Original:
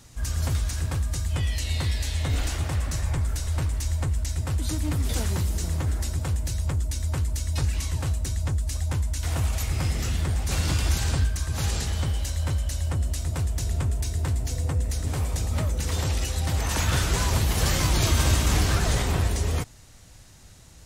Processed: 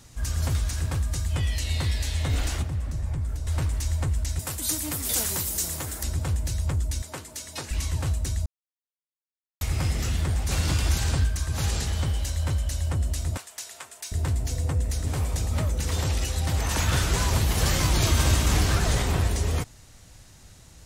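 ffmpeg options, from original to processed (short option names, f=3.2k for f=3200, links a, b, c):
-filter_complex "[0:a]asettb=1/sr,asplit=3[a][b][c];[a]atrim=end=2.624[d];[b]atrim=start=2.62:end=3.47,asetpts=PTS-STARTPTS,afade=t=in:d=0.004:c=qsin,afade=t=out:st=0.846:d=0.004:c=qsin,acrossover=split=300|840[e][f][g];[e]acompressor=threshold=-25dB:ratio=4[h];[f]acompressor=threshold=-51dB:ratio=4[i];[g]acompressor=threshold=-51dB:ratio=4[j];[h][i][j]amix=inputs=3:normalize=0[k];[c]atrim=start=3.466[l];[d][k]acrossfade=d=0.004:c1=hsin:c2=qsin[m];[m][l]acrossfade=d=0.004:c1=qsin:c2=hsin,asettb=1/sr,asplit=3[n][o][p];[n]atrim=end=4.394[q];[o]atrim=start=4.39:end=6.03,asetpts=PTS-STARTPTS,afade=t=in:d=0.004:c=qsin,afade=t=out:st=1.636:d=0.004:c=qsin,aemphasis=mode=production:type=bsi[r];[p]atrim=start=6.026[s];[q][r]acrossfade=d=0.004:c1=hsin:c2=qsin[t];[t][s]acrossfade=d=0.004:c1=qsin:c2=hsin,asettb=1/sr,asplit=3[u][v][w];[u]atrim=end=7.024[x];[v]atrim=start=7.02:end=7.71,asetpts=PTS-STARTPTS,afade=t=in:d=0.004:c=qsin,afade=t=out:st=0.686:d=0.004:c=qsin,highpass=290[y];[w]atrim=start=7.706[z];[x][y]acrossfade=d=0.004:c1=hsin:c2=qsin[aa];[aa][z]acrossfade=d=0.004:c1=qsin:c2=hsin,asettb=1/sr,asplit=3[ab][ac][ad];[ab]atrim=end=13.374[ae];[ac]atrim=start=13.37:end=14.12,asetpts=PTS-STARTPTS,afade=t=in:d=0.004:c=qsin,afade=t=out:st=0.746:d=0.004:c=qsin,highpass=1k[af];[ad]atrim=start=14.116[ag];[ae][af]acrossfade=d=0.004:c1=hsin:c2=qsin[ah];[ah][ag]acrossfade=d=0.004:c1=qsin:c2=hsin,asplit=3[ai][aj][ak];[ai]atrim=end=8.46,asetpts=PTS-STARTPTS,afade=t=out:st=8.456:d=0.004:c=hsin[al];[aj]atrim=start=8.46:end=9.61,asetpts=PTS-STARTPTS,volume=0[am];[ak]atrim=start=9.61,asetpts=PTS-STARTPTS,afade=t=in:d=0.004:c=hsin[an];[al][am][an]concat=n=3:v=0:a=1"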